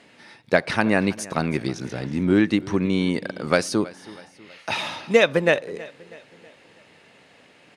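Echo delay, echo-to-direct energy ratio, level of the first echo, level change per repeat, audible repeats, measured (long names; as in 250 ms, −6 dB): 322 ms, −19.0 dB, −20.0 dB, −6.5 dB, 3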